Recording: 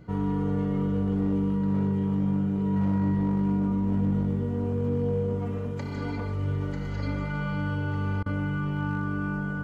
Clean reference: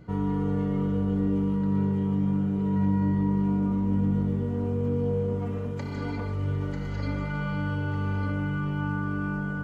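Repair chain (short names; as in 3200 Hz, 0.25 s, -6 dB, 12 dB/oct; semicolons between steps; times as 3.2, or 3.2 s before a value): clip repair -19.5 dBFS; interpolate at 8.23, 29 ms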